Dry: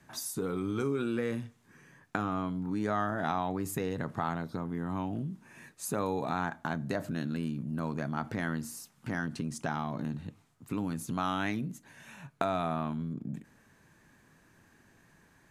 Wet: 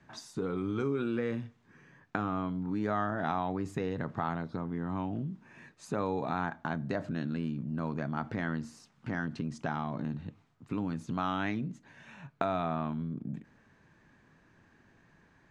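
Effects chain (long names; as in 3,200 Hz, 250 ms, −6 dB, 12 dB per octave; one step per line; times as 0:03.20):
high-frequency loss of the air 130 metres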